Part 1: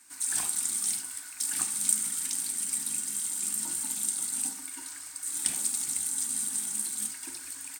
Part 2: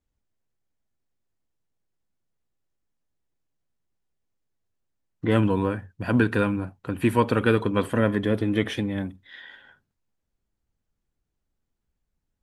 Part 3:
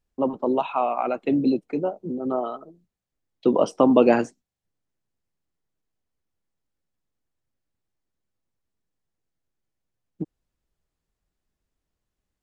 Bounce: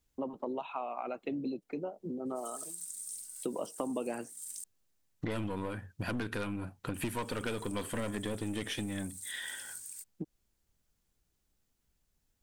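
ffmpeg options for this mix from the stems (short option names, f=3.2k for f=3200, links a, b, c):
-filter_complex "[0:a]acrossover=split=180[a][b];[b]acompressor=threshold=-40dB:ratio=4[c];[a][c]amix=inputs=2:normalize=0,adynamicequalizer=threshold=0.00141:dfrequency=4500:dqfactor=0.7:tfrequency=4500:tqfactor=0.7:attack=5:release=100:ratio=0.375:range=4:mode=boostabove:tftype=highshelf,adelay=2250,volume=-19dB,asplit=3[d][e][f];[d]atrim=end=4.64,asetpts=PTS-STARTPTS,afade=t=out:st=4.636:d=0.004:c=hsin[g];[e]atrim=start=4.64:end=6.94,asetpts=PTS-STARTPTS,volume=0[h];[f]atrim=start=6.94,asetpts=PTS-STARTPTS,afade=t=in:d=0.004:c=hsin[i];[g][h][i]concat=n=3:v=0:a=1[j];[1:a]aeval=exprs='(tanh(8.91*val(0)+0.5)-tanh(0.5))/8.91':c=same,volume=2dB[k];[2:a]highshelf=f=4.6k:g=-10.5,volume=-6.5dB[l];[j][k][l]amix=inputs=3:normalize=0,highshelf=f=3k:g=11,acompressor=threshold=-35dB:ratio=4"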